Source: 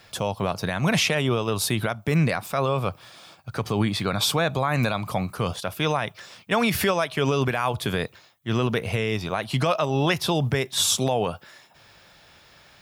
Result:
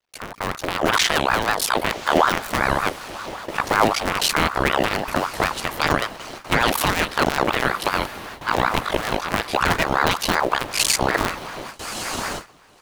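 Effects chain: cycle switcher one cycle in 2, muted; echo that smears into a reverb 1159 ms, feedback 56%, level -14.5 dB; gate with hold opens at -30 dBFS; level rider gain up to 17 dB; ring modulator with a swept carrier 870 Hz, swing 50%, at 5.3 Hz; trim -1 dB

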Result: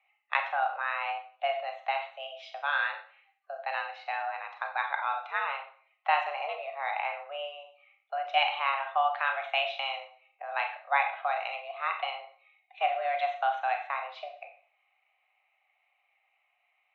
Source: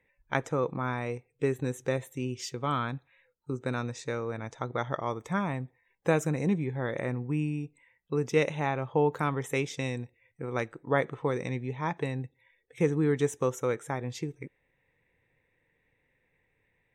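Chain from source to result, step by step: Schroeder reverb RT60 0.48 s, combs from 29 ms, DRR 4.5 dB; mistuned SSB +280 Hz 380–3500 Hz; dynamic bell 3 kHz, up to +6 dB, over -48 dBFS, Q 1.5

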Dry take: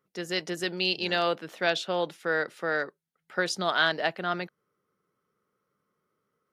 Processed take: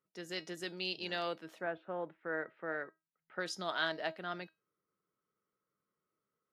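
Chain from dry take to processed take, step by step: 1.58–3.39 s: low-pass 1.6 kHz -> 3 kHz 24 dB/octave; feedback comb 320 Hz, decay 0.23 s, harmonics all, mix 60%; trim -4 dB

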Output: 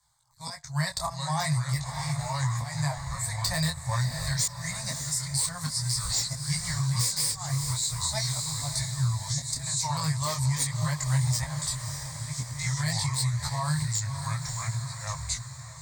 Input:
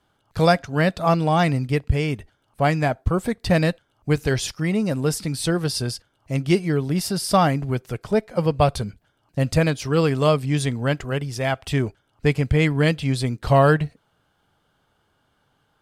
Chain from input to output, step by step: ever faster or slower copies 587 ms, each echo -4 st, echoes 2, each echo -6 dB; Chebyshev band-stop 160–670 Hz, order 4; hum notches 50/100 Hz; slow attack 474 ms; resonant high shelf 4.1 kHz +11.5 dB, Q 3; in parallel at -5 dB: integer overflow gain 12.5 dB; on the sum: rippled EQ curve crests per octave 1, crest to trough 12 dB; gate -39 dBFS, range -6 dB; on a send: echo that smears into a reverb 608 ms, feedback 52%, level -12 dB; on the sum: compression 6:1, threshold -21 dBFS, peak gain reduction 11.5 dB; detune thickener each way 16 cents

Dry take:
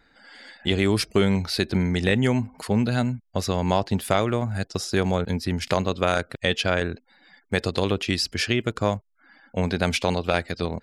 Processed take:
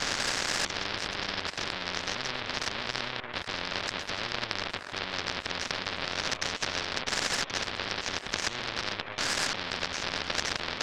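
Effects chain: one-bit comparator; resonant low-pass 1.7 kHz, resonance Q 5.2; peaking EQ 580 Hz +7.5 dB 0.23 oct; on a send: repeats whose band climbs or falls 247 ms, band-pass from 500 Hz, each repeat 0.7 oct, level -5 dB; on the sum: power-law waveshaper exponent 3; spectrum-flattening compressor 4:1

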